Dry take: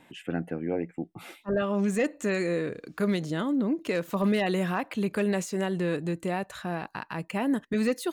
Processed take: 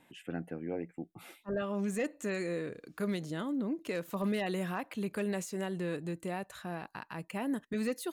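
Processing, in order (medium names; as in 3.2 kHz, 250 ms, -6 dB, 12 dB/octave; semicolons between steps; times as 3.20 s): peaking EQ 12 kHz +6 dB 0.9 oct; trim -7.5 dB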